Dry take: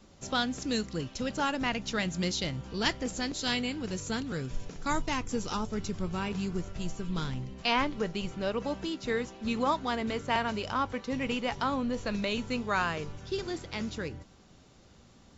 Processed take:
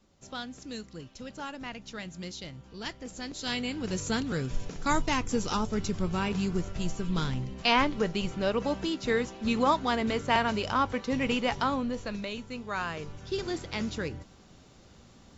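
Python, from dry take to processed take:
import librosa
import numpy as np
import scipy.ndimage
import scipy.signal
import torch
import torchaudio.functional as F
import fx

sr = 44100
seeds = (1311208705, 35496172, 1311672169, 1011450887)

y = fx.gain(x, sr, db=fx.line((2.95, -9.0), (3.97, 3.5), (11.53, 3.5), (12.48, -7.0), (13.5, 2.5)))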